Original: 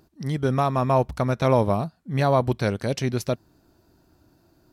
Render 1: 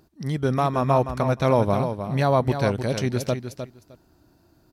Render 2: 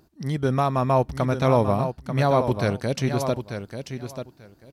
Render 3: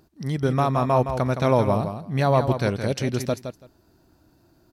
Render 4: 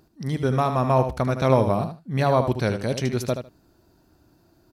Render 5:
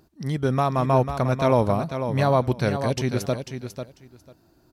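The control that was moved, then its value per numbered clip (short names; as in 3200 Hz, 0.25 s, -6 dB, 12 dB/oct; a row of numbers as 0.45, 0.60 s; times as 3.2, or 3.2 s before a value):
feedback echo, time: 307, 889, 166, 76, 495 ms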